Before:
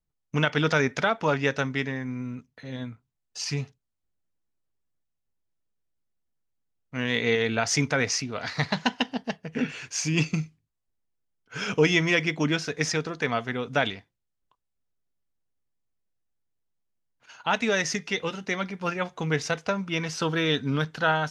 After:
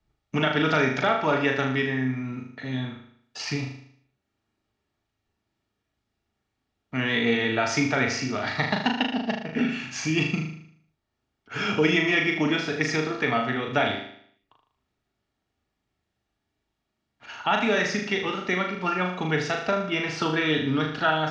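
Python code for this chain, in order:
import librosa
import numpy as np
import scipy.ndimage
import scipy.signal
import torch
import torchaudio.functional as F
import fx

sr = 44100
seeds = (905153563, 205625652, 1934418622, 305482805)

p1 = scipy.signal.sosfilt(scipy.signal.butter(2, 4100.0, 'lowpass', fs=sr, output='sos'), x)
p2 = fx.peak_eq(p1, sr, hz=160.0, db=-9.5, octaves=0.22)
p3 = fx.notch_comb(p2, sr, f0_hz=510.0)
p4 = p3 + fx.room_flutter(p3, sr, wall_m=6.6, rt60_s=0.56, dry=0)
p5 = fx.band_squash(p4, sr, depth_pct=40)
y = p5 * librosa.db_to_amplitude(2.0)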